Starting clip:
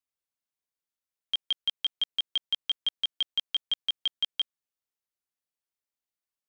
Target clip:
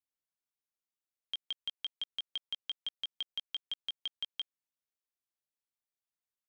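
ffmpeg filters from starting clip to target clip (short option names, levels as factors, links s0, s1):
-af "acompressor=threshold=0.0355:ratio=6,volume=0.501"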